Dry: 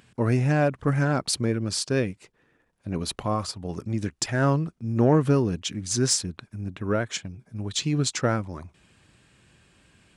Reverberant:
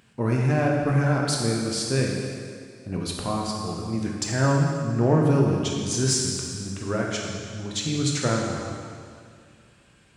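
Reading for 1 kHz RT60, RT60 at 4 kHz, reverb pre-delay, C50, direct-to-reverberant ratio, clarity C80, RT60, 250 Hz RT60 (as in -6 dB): 2.2 s, 2.1 s, 7 ms, 1.0 dB, -1.5 dB, 2.5 dB, 2.2 s, 2.3 s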